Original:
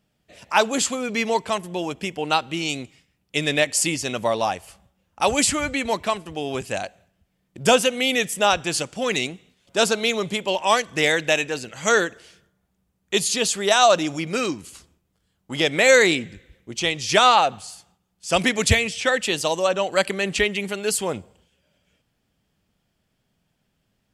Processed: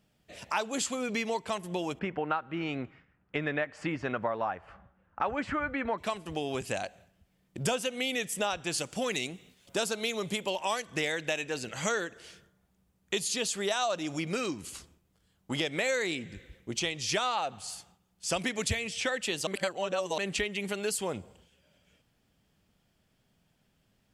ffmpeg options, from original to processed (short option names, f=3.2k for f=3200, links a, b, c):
-filter_complex "[0:a]asettb=1/sr,asplit=3[a][b][c];[a]atrim=end=1.994[d];[b]atrim=start=1.99:end=5.98,asetpts=PTS-STARTPTS,afade=t=in:d=0.004:c=qsin,afade=t=out:st=3.986:d=0.004:c=qsin,lowpass=f=1.5k:t=q:w=2.5[e];[c]atrim=start=5.976[f];[d][e]acrossfade=d=0.004:c1=hsin:c2=qsin[g];[g][f]acrossfade=d=0.004:c1=qsin:c2=hsin,asettb=1/sr,asplit=3[h][i][j];[h]atrim=end=8.784[k];[i]atrim=start=8.78:end=10.87,asetpts=PTS-STARTPTS,afade=t=in:d=0.004:c=qsin,afade=t=out:st=2.086:d=0.004:c=qsin,highshelf=f=11k:g=11.5[l];[j]atrim=start=10.866[m];[k][l]acrossfade=d=0.004:c1=hsin:c2=qsin[n];[n][m]acrossfade=d=0.004:c1=qsin:c2=hsin,asplit=3[o][p][q];[o]atrim=end=19.472[r];[p]atrim=start=19.468:end=20.182,asetpts=PTS-STARTPTS,areverse[s];[q]atrim=start=20.178[t];[r][s]acrossfade=d=0.004:c1=hsin:c2=hsin[u];[u][t]acrossfade=d=0.004:c1=hsin:c2=hsin,acompressor=threshold=-30dB:ratio=4"